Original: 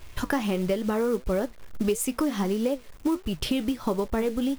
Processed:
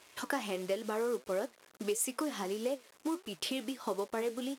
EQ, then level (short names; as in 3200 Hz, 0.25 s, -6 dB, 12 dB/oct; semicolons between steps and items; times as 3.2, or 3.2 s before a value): HPF 350 Hz 12 dB/oct; LPF 11000 Hz 12 dB/oct; high shelf 7000 Hz +7 dB; -6.0 dB